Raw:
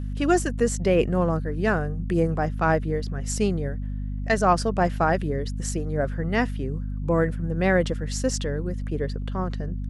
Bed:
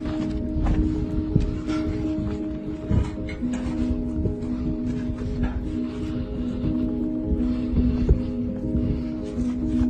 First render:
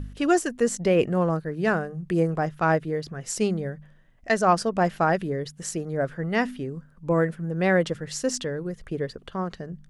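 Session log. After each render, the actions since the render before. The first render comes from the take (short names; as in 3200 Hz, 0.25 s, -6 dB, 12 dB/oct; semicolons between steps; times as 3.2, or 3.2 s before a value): de-hum 50 Hz, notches 5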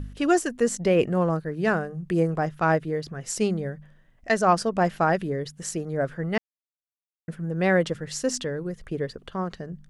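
6.38–7.28 mute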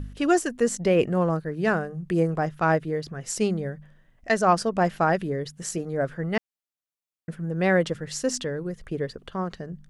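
5.56–5.99 doubler 17 ms -11 dB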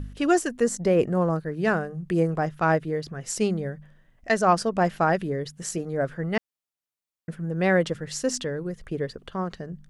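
0.64–1.36 bell 2800 Hz -7 dB 0.87 oct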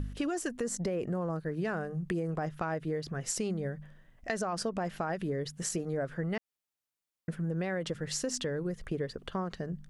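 limiter -18 dBFS, peak gain reduction 10 dB; compressor, threshold -30 dBFS, peak gain reduction 8.5 dB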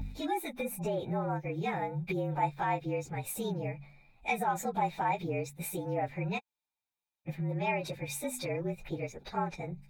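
inharmonic rescaling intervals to 112%; small resonant body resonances 860/2400/3700 Hz, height 13 dB, ringing for 20 ms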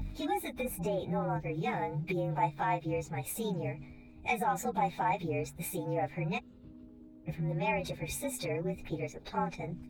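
add bed -28 dB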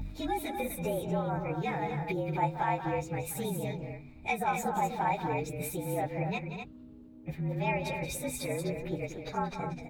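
loudspeakers at several distances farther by 62 m -10 dB, 86 m -7 dB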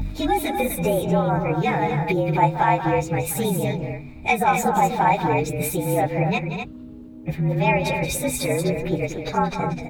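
gain +11.5 dB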